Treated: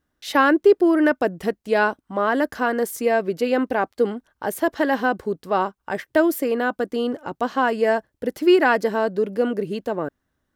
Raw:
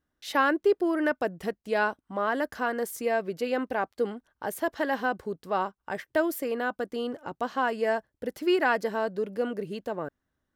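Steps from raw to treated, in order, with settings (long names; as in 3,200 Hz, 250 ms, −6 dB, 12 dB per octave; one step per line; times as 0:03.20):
dynamic equaliser 300 Hz, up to +4 dB, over −39 dBFS, Q 1.2
level +6 dB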